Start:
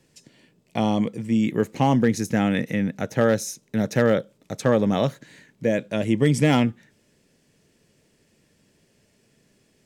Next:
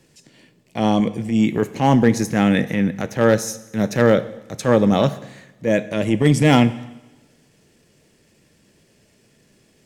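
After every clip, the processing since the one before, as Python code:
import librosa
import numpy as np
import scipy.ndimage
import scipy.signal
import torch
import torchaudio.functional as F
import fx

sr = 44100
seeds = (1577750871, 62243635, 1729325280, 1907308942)

y = fx.transient(x, sr, attack_db=-8, sustain_db=-3)
y = fx.rev_double_slope(y, sr, seeds[0], early_s=0.98, late_s=2.7, knee_db=-25, drr_db=13.0)
y = F.gain(torch.from_numpy(y), 6.0).numpy()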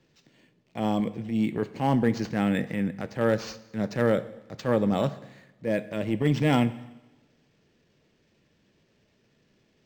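y = np.interp(np.arange(len(x)), np.arange(len(x))[::4], x[::4])
y = F.gain(torch.from_numpy(y), -8.5).numpy()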